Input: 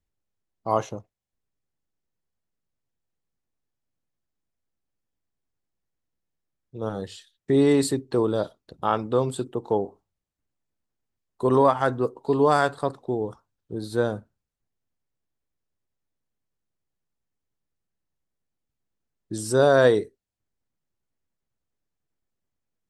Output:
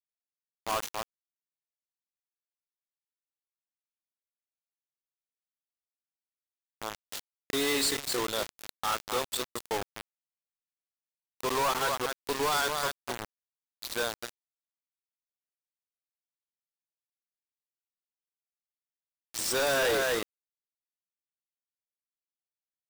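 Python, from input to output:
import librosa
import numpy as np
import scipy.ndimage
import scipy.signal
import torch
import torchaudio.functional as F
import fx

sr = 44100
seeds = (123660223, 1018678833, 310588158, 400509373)

y = x + 10.0 ** (-9.0 / 20.0) * np.pad(x, (int(244 * sr / 1000.0), 0))[:len(x)]
y = fx.gate_flip(y, sr, shuts_db=-20.0, range_db=-25, at=(6.95, 7.52), fade=0.02)
y = fx.filter_sweep_bandpass(y, sr, from_hz=4200.0, to_hz=840.0, start_s=19.07, end_s=21.41, q=0.84)
y = fx.quant_companded(y, sr, bits=2)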